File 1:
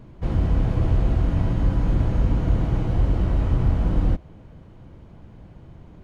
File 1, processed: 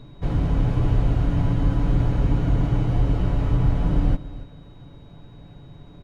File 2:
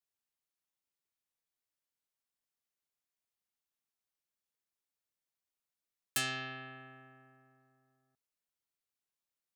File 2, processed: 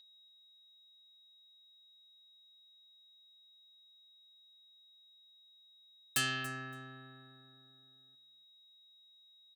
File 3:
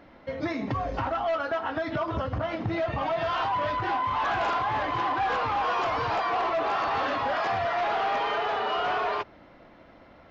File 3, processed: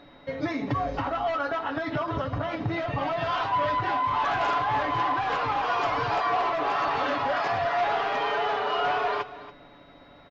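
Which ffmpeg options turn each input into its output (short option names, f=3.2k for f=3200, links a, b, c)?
-af "aeval=exprs='val(0)+0.00178*sin(2*PI*3800*n/s)':c=same,aecho=1:1:7:0.46,aecho=1:1:283|566:0.158|0.0238"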